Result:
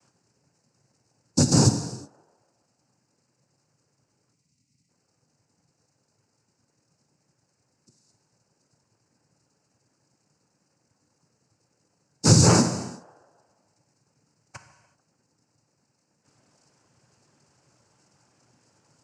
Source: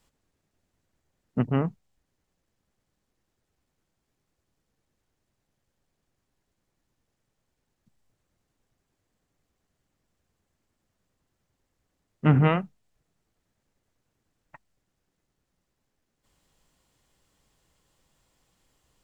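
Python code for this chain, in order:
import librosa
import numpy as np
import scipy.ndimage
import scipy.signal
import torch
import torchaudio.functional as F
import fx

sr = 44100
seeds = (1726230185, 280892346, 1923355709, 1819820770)

p1 = scipy.signal.sosfilt(scipy.signal.butter(2, 3200.0, 'lowpass', fs=sr, output='sos'), x)
p2 = (np.kron(scipy.signal.resample_poly(p1, 1, 6), np.eye(6)[0]) * 6)[:len(p1)]
p3 = p2 + fx.echo_banded(p2, sr, ms=146, feedback_pct=58, hz=750.0, wet_db=-21.0, dry=0)
p4 = fx.noise_vocoder(p3, sr, seeds[0], bands=8)
p5 = fx.high_shelf(p4, sr, hz=2500.0, db=-12.0)
p6 = fx.over_compress(p5, sr, threshold_db=-25.0, ratio=-0.5)
p7 = p5 + (p6 * 10.0 ** (-3.0 / 20.0))
p8 = fx.spec_box(p7, sr, start_s=4.34, length_s=0.55, low_hz=290.0, high_hz=1900.0, gain_db=-16)
p9 = fx.rev_gated(p8, sr, seeds[1], gate_ms=400, shape='falling', drr_db=7.0)
y = p9 * 10.0 ** (1.5 / 20.0)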